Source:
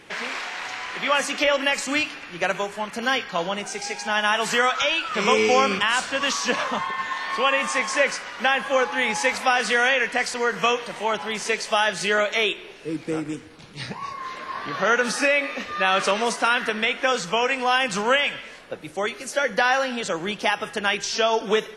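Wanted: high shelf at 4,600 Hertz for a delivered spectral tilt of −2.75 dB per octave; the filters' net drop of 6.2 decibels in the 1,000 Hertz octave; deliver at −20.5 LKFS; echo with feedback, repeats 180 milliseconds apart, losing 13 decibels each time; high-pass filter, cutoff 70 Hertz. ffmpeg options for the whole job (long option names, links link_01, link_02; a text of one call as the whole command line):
ffmpeg -i in.wav -af "highpass=70,equalizer=frequency=1000:width_type=o:gain=-8,highshelf=frequency=4600:gain=-7.5,aecho=1:1:180|360|540:0.224|0.0493|0.0108,volume=5dB" out.wav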